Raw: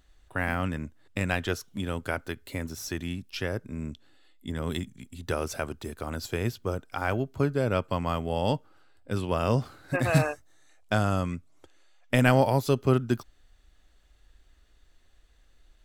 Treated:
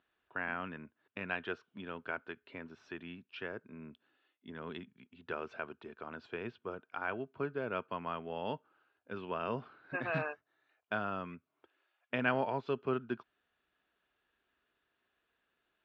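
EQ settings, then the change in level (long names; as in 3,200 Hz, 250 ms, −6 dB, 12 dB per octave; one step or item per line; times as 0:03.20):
loudspeaker in its box 200–2,500 Hz, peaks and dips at 300 Hz −5 dB, 550 Hz −8 dB, 790 Hz −7 dB, 1,200 Hz −4 dB, 2,000 Hz −10 dB
low-shelf EQ 330 Hz −11.5 dB
−1.5 dB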